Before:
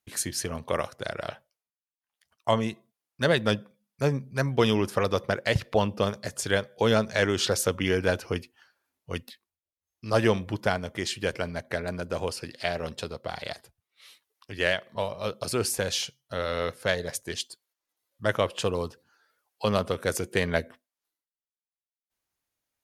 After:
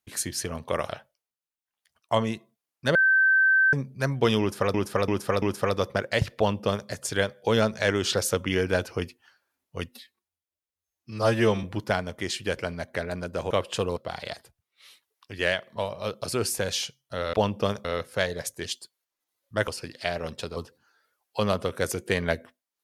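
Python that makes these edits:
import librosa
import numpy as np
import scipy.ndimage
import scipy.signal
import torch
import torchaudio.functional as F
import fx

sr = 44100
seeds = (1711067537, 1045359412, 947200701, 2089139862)

y = fx.edit(x, sr, fx.cut(start_s=0.89, length_s=0.36),
    fx.bleep(start_s=3.31, length_s=0.78, hz=1550.0, db=-16.5),
    fx.repeat(start_s=4.76, length_s=0.34, count=4),
    fx.duplicate(start_s=5.71, length_s=0.51, to_s=16.53),
    fx.stretch_span(start_s=9.25, length_s=1.15, factor=1.5),
    fx.swap(start_s=12.27, length_s=0.89, other_s=18.36, other_length_s=0.46), tone=tone)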